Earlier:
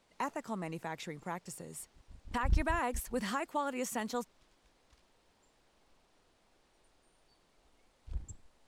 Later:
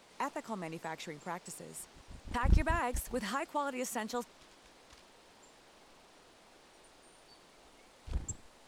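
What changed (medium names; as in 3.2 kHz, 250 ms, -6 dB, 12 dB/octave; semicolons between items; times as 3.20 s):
background +11.5 dB; master: add bass shelf 110 Hz -11.5 dB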